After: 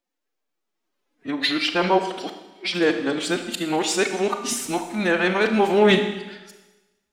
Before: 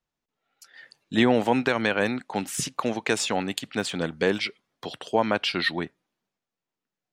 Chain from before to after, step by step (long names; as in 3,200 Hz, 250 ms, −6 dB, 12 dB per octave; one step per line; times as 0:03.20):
played backwards from end to start
phase-vocoder pitch shift with formants kept +9 semitones
four-comb reverb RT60 1.1 s, combs from 26 ms, DRR 6.5 dB
level +3.5 dB